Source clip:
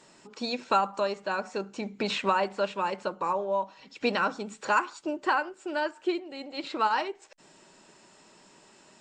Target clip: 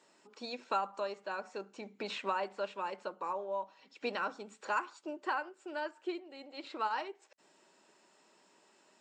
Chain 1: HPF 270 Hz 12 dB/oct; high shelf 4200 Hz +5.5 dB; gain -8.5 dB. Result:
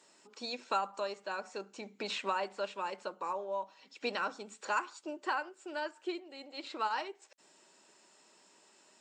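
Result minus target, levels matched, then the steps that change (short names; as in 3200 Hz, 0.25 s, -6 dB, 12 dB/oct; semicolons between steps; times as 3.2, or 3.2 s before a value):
8000 Hz band +6.0 dB
change: high shelf 4200 Hz -3.5 dB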